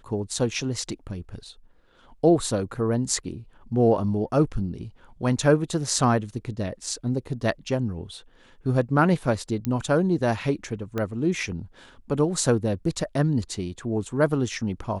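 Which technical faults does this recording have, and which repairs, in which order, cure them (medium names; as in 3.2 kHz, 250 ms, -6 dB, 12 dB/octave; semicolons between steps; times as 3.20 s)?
9.65 s: pop -13 dBFS
10.98 s: pop -15 dBFS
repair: de-click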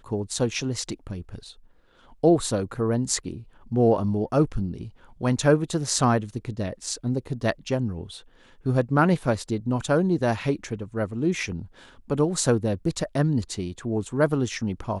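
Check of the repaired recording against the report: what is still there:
10.98 s: pop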